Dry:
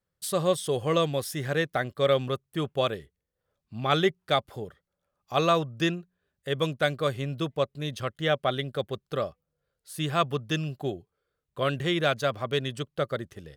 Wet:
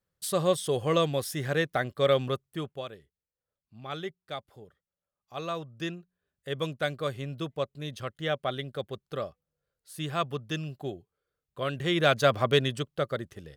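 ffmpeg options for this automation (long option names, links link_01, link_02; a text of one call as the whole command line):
ffmpeg -i in.wav -af "volume=18.5dB,afade=type=out:start_time=2.33:duration=0.51:silence=0.237137,afade=type=in:start_time=5.33:duration=1.19:silence=0.375837,afade=type=in:start_time=11.74:duration=0.68:silence=0.298538,afade=type=out:start_time=12.42:duration=0.49:silence=0.446684" out.wav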